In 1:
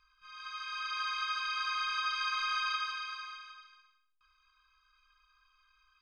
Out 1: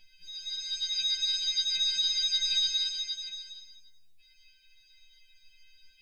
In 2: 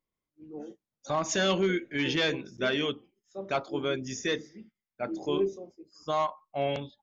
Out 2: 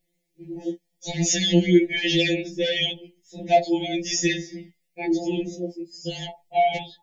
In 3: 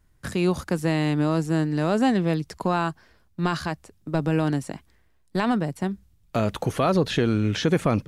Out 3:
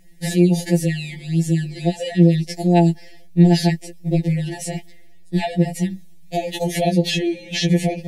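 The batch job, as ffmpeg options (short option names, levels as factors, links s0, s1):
-af "acompressor=threshold=0.0631:ratio=4,asuperstop=centerf=1200:order=12:qfactor=1.3,alimiter=level_in=17.8:limit=0.891:release=50:level=0:latency=1,afftfilt=real='re*2.83*eq(mod(b,8),0)':imag='im*2.83*eq(mod(b,8),0)':win_size=2048:overlap=0.75,volume=0.376"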